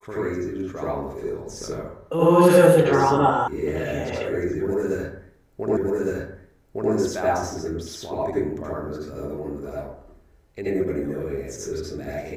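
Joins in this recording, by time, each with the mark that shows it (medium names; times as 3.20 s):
3.48 s: sound stops dead
5.77 s: repeat of the last 1.16 s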